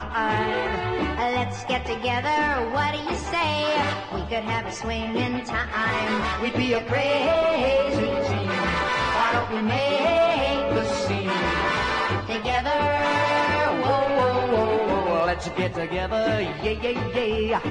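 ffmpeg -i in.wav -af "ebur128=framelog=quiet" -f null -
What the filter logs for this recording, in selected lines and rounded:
Integrated loudness:
  I:         -23.4 LUFS
  Threshold: -33.4 LUFS
Loudness range:
  LRA:         3.0 LU
  Threshold: -43.2 LUFS
  LRA low:   -25.1 LUFS
  LRA high:  -22.1 LUFS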